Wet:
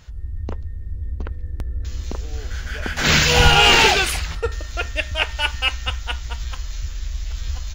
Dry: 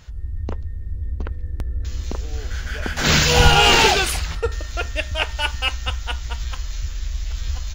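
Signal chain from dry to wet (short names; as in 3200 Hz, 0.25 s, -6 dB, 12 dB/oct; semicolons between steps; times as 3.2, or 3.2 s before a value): dynamic EQ 2200 Hz, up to +4 dB, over -33 dBFS, Q 1.1; gain -1 dB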